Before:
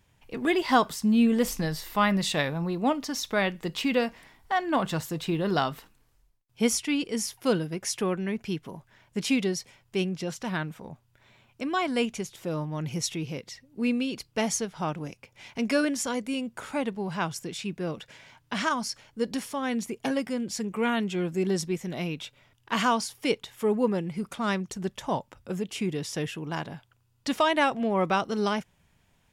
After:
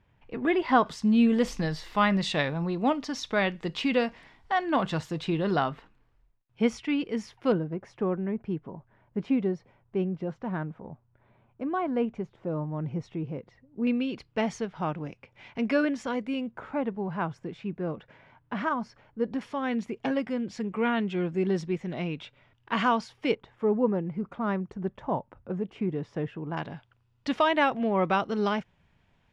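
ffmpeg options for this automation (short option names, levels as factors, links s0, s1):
-af "asetnsamples=n=441:p=0,asendcmd='0.86 lowpass f 4600;5.56 lowpass f 2400;7.52 lowpass f 1100;13.87 lowpass f 2600;16.51 lowpass f 1500;19.41 lowpass f 2800;23.35 lowpass f 1300;26.57 lowpass f 3400',lowpass=2300"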